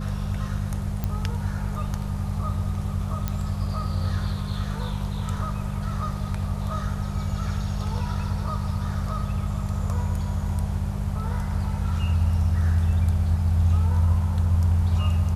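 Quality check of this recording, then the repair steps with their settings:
hum 50 Hz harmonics 4 -29 dBFS
1.04 pop -15 dBFS
3.28 pop -13 dBFS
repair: de-click; de-hum 50 Hz, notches 4

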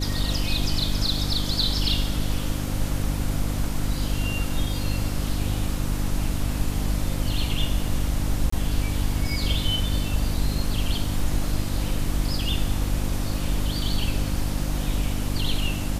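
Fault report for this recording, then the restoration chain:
hum 50 Hz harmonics 6 -28 dBFS
8.5–8.52 gap 24 ms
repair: de-hum 50 Hz, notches 6; interpolate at 8.5, 24 ms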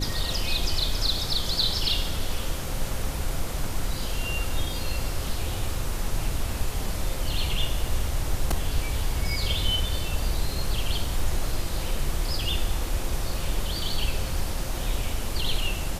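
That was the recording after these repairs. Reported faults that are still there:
none

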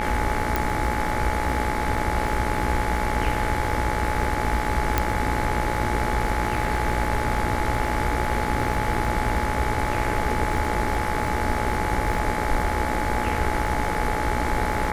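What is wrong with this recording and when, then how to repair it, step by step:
buzz 60 Hz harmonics 38 -29 dBFS
crackle 34/s -30 dBFS
tone 850 Hz -28 dBFS
0.56 pop
4.98 pop -5 dBFS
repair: de-click; de-hum 60 Hz, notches 38; notch 850 Hz, Q 30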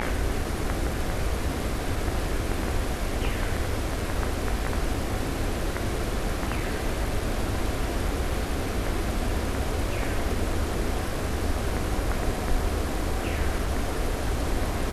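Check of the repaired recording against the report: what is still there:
0.56 pop
4.98 pop

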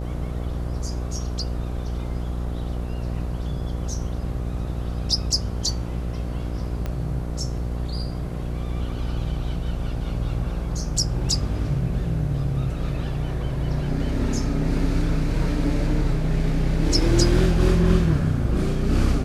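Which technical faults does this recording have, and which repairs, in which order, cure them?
buzz 60 Hz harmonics 13 -28 dBFS
6.86 pop -16 dBFS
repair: de-click; de-hum 60 Hz, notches 13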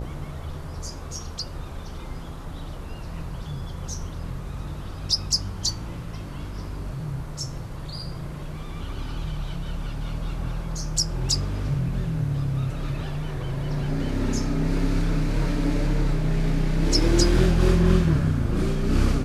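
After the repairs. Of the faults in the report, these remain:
6.86 pop

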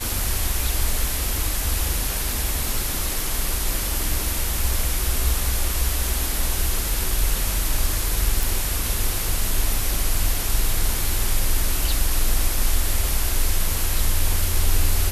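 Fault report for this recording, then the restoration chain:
8.43 pop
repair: de-click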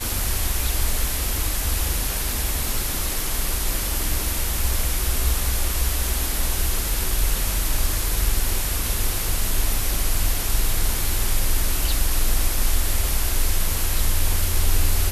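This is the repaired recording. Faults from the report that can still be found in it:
none

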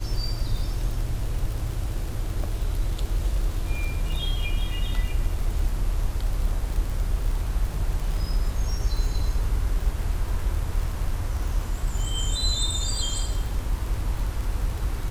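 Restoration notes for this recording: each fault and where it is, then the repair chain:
crackle 44/s -30 dBFS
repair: de-click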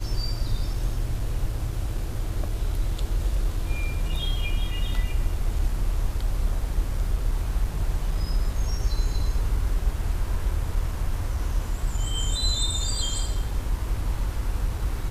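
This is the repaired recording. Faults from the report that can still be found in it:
none

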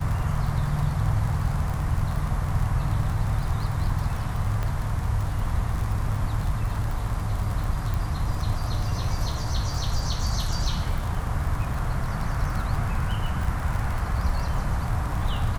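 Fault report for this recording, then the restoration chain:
crackle 53/s -29 dBFS
4.63 pop -17 dBFS
7.94 pop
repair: de-click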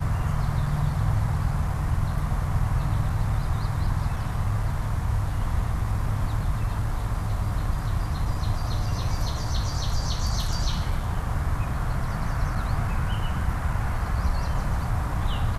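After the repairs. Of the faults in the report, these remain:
none

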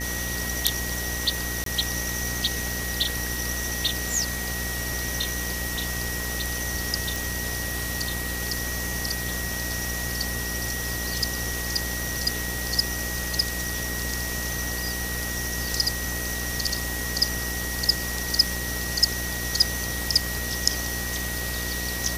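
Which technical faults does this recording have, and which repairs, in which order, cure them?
buzz 60 Hz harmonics 14 -33 dBFS
tone 1900 Hz -33 dBFS
1.64–1.66 gap 23 ms
7.16 pop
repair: de-click; de-hum 60 Hz, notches 14; notch 1900 Hz, Q 30; interpolate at 1.64, 23 ms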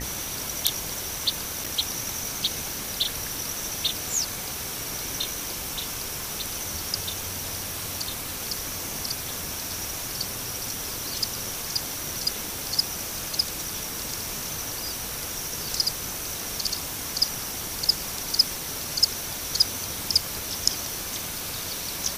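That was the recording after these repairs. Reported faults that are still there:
none

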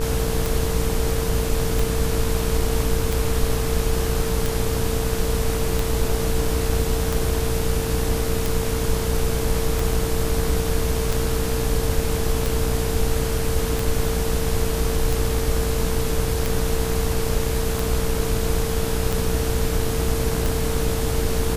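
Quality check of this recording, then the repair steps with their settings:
buzz 60 Hz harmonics 29 -26 dBFS
tick 45 rpm
tone 450 Hz -27 dBFS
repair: de-click; notch 450 Hz, Q 30; de-hum 60 Hz, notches 29

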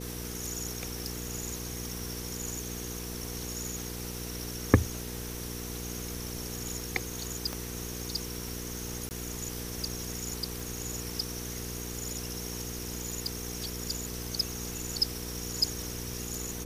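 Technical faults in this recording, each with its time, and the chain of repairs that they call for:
hum 60 Hz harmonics 8 -40 dBFS
7.53 pop -19 dBFS
9.09–9.11 gap 19 ms
10.6 pop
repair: de-click; de-hum 60 Hz, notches 8; interpolate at 9.09, 19 ms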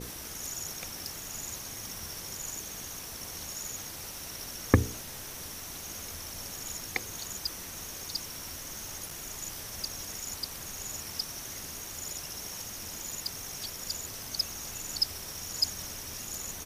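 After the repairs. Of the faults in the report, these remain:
none

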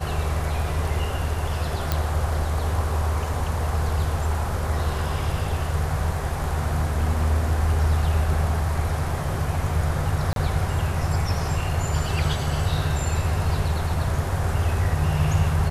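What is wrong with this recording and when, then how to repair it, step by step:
1.92 pop -8 dBFS
10.33–10.36 gap 32 ms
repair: de-click; interpolate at 10.33, 32 ms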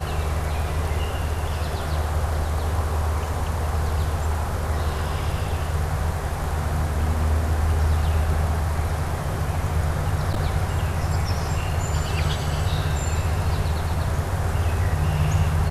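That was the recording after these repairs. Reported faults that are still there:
none

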